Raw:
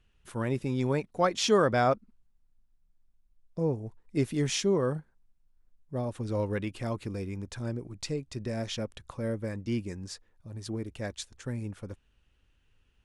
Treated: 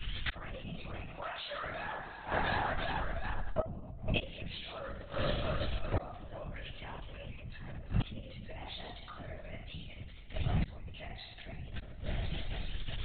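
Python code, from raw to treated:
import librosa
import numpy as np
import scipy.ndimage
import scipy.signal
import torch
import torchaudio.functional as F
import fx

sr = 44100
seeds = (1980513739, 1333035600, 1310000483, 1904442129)

y = fx.pitch_ramps(x, sr, semitones=5.5, every_ms=192)
y = scipy.signal.sosfilt(scipy.signal.cheby1(5, 1.0, [170.0, 520.0], 'bandstop', fs=sr, output='sos'), y)
y = fx.peak_eq(y, sr, hz=520.0, db=-12.0, octaves=2.8)
y = fx.rev_double_slope(y, sr, seeds[0], early_s=0.45, late_s=1.8, knee_db=-18, drr_db=-4.0)
y = fx.env_lowpass_down(y, sr, base_hz=660.0, full_db=-18.0)
y = 10.0 ** (-27.5 / 20.0) * np.tanh(y / 10.0 ** (-27.5 / 20.0))
y = fx.echo_feedback(y, sr, ms=356, feedback_pct=57, wet_db=-23)
y = fx.gate_flip(y, sr, shuts_db=-38.0, range_db=-38)
y = fx.lpc_vocoder(y, sr, seeds[1], excitation='whisper', order=16)
y = fx.env_flatten(y, sr, amount_pct=50)
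y = F.gain(torch.from_numpy(y), 17.5).numpy()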